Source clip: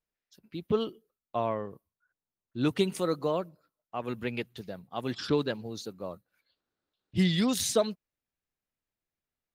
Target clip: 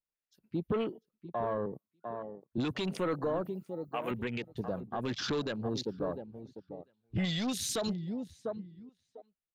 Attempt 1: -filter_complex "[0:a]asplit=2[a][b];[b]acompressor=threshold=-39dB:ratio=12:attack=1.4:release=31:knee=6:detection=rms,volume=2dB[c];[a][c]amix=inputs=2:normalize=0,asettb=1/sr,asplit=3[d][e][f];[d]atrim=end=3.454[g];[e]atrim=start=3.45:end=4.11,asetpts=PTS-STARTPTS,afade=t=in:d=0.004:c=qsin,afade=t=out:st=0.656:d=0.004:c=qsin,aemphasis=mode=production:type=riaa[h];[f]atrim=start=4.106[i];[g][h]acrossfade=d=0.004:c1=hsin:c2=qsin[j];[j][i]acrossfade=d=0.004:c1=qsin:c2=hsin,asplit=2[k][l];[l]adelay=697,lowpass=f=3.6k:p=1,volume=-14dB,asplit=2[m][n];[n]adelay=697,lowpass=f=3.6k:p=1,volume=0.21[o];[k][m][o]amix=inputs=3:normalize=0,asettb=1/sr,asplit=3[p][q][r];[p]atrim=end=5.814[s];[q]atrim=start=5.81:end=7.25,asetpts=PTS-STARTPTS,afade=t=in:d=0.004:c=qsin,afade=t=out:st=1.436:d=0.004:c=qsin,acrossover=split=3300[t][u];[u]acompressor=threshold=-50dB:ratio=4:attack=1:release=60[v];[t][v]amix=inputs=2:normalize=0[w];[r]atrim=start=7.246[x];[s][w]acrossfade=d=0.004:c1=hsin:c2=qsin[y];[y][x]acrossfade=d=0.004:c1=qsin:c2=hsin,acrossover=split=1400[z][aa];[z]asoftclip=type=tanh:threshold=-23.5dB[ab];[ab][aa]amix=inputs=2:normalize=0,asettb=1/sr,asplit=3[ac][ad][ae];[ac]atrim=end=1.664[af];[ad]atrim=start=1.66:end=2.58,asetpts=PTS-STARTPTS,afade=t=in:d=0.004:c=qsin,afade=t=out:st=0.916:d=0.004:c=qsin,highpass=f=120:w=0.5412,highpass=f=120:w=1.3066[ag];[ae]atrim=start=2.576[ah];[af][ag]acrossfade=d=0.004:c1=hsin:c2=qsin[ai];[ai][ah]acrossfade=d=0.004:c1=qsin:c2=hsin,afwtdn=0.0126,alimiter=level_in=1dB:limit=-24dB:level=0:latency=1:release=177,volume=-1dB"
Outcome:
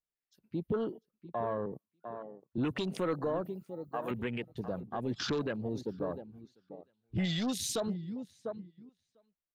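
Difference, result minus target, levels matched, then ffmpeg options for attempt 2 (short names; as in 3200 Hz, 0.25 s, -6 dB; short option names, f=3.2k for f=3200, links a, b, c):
compressor: peak gain reduction +10.5 dB
-filter_complex "[0:a]asplit=2[a][b];[b]acompressor=threshold=-27.5dB:ratio=12:attack=1.4:release=31:knee=6:detection=rms,volume=2dB[c];[a][c]amix=inputs=2:normalize=0,asettb=1/sr,asplit=3[d][e][f];[d]atrim=end=3.454[g];[e]atrim=start=3.45:end=4.11,asetpts=PTS-STARTPTS,afade=t=in:d=0.004:c=qsin,afade=t=out:st=0.656:d=0.004:c=qsin,aemphasis=mode=production:type=riaa[h];[f]atrim=start=4.106[i];[g][h]acrossfade=d=0.004:c1=hsin:c2=qsin[j];[j][i]acrossfade=d=0.004:c1=qsin:c2=hsin,asplit=2[k][l];[l]adelay=697,lowpass=f=3.6k:p=1,volume=-14dB,asplit=2[m][n];[n]adelay=697,lowpass=f=3.6k:p=1,volume=0.21[o];[k][m][o]amix=inputs=3:normalize=0,asettb=1/sr,asplit=3[p][q][r];[p]atrim=end=5.814[s];[q]atrim=start=5.81:end=7.25,asetpts=PTS-STARTPTS,afade=t=in:d=0.004:c=qsin,afade=t=out:st=1.436:d=0.004:c=qsin,acrossover=split=3300[t][u];[u]acompressor=threshold=-50dB:ratio=4:attack=1:release=60[v];[t][v]amix=inputs=2:normalize=0[w];[r]atrim=start=7.246[x];[s][w]acrossfade=d=0.004:c1=hsin:c2=qsin[y];[y][x]acrossfade=d=0.004:c1=qsin:c2=hsin,acrossover=split=1400[z][aa];[z]asoftclip=type=tanh:threshold=-23.5dB[ab];[ab][aa]amix=inputs=2:normalize=0,asettb=1/sr,asplit=3[ac][ad][ae];[ac]atrim=end=1.664[af];[ad]atrim=start=1.66:end=2.58,asetpts=PTS-STARTPTS,afade=t=in:d=0.004:c=qsin,afade=t=out:st=0.916:d=0.004:c=qsin,highpass=f=120:w=0.5412,highpass=f=120:w=1.3066[ag];[ae]atrim=start=2.576[ah];[af][ag]acrossfade=d=0.004:c1=hsin:c2=qsin[ai];[ai][ah]acrossfade=d=0.004:c1=qsin:c2=hsin,afwtdn=0.0126,alimiter=level_in=1dB:limit=-24dB:level=0:latency=1:release=177,volume=-1dB"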